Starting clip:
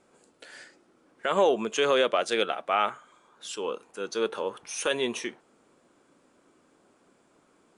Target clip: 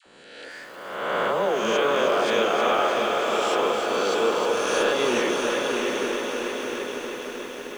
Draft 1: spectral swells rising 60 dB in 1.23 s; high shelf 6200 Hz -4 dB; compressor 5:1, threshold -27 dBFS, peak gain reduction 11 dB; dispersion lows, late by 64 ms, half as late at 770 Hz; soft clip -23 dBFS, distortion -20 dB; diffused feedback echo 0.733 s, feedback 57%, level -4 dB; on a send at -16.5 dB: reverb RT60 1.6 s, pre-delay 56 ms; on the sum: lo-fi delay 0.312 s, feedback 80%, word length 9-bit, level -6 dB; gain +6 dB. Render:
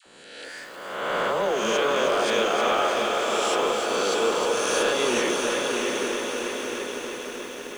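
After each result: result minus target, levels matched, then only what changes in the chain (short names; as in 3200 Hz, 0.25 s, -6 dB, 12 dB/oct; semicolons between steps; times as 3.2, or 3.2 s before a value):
soft clip: distortion +13 dB; 8000 Hz band +5.0 dB
change: soft clip -15.5 dBFS, distortion -33 dB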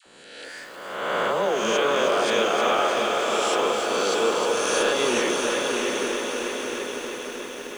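8000 Hz band +5.0 dB
change: high shelf 6200 Hz -15 dB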